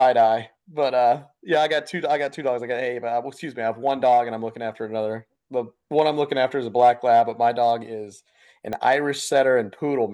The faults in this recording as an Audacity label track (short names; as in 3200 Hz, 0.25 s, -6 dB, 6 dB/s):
8.730000	8.730000	pop -15 dBFS